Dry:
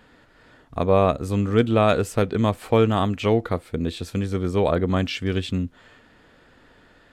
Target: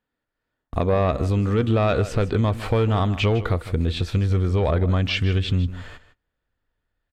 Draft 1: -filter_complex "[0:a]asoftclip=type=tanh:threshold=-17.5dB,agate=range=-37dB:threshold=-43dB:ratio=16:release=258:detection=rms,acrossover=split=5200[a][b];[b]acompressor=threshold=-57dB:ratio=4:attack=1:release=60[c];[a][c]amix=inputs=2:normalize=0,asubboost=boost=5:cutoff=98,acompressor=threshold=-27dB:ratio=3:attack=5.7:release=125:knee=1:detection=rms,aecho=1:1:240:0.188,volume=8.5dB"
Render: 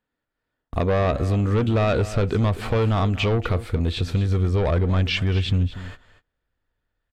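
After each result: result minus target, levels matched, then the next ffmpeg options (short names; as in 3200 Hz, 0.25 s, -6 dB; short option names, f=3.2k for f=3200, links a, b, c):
echo 84 ms late; soft clip: distortion +8 dB
-filter_complex "[0:a]asoftclip=type=tanh:threshold=-17.5dB,agate=range=-37dB:threshold=-43dB:ratio=16:release=258:detection=rms,acrossover=split=5200[a][b];[b]acompressor=threshold=-57dB:ratio=4:attack=1:release=60[c];[a][c]amix=inputs=2:normalize=0,asubboost=boost=5:cutoff=98,acompressor=threshold=-27dB:ratio=3:attack=5.7:release=125:knee=1:detection=rms,aecho=1:1:156:0.188,volume=8.5dB"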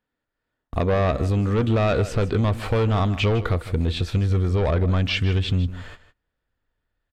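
soft clip: distortion +8 dB
-filter_complex "[0:a]asoftclip=type=tanh:threshold=-10.5dB,agate=range=-37dB:threshold=-43dB:ratio=16:release=258:detection=rms,acrossover=split=5200[a][b];[b]acompressor=threshold=-57dB:ratio=4:attack=1:release=60[c];[a][c]amix=inputs=2:normalize=0,asubboost=boost=5:cutoff=98,acompressor=threshold=-27dB:ratio=3:attack=5.7:release=125:knee=1:detection=rms,aecho=1:1:156:0.188,volume=8.5dB"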